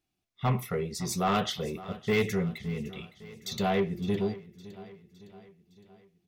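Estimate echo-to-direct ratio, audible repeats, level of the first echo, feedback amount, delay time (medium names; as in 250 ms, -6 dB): -16.0 dB, 4, -17.5 dB, 53%, 561 ms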